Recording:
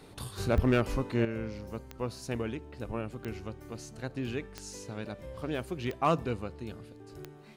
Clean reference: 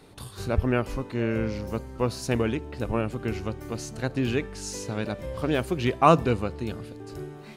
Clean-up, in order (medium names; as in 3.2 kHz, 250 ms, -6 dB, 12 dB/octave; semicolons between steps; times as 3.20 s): clip repair -17.5 dBFS; de-click; gain correction +9 dB, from 1.25 s